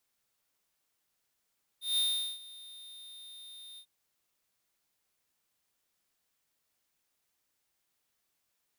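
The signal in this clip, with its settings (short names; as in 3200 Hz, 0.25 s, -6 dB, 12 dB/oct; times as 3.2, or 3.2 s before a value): ADSR square 3650 Hz, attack 0.165 s, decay 0.408 s, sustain -21 dB, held 1.97 s, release 76 ms -28 dBFS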